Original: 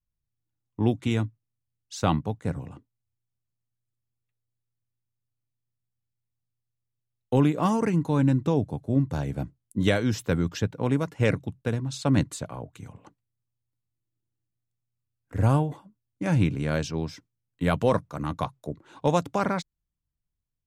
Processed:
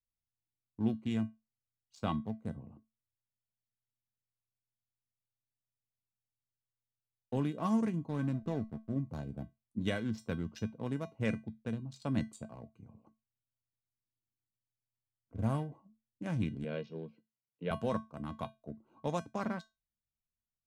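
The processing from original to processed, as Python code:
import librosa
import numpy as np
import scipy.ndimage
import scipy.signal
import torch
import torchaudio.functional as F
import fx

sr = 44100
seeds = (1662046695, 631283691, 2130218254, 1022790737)

y = fx.wiener(x, sr, points=25)
y = fx.backlash(y, sr, play_db=-32.5, at=(8.09, 8.92))
y = fx.cabinet(y, sr, low_hz=150.0, low_slope=24, high_hz=3700.0, hz=(260.0, 470.0, 800.0, 1200.0, 1900.0, 2700.0), db=(-9, 9, -6, -9, -5, 4), at=(16.64, 17.71))
y = fx.comb_fb(y, sr, f0_hz=220.0, decay_s=0.22, harmonics='odd', damping=0.0, mix_pct=80)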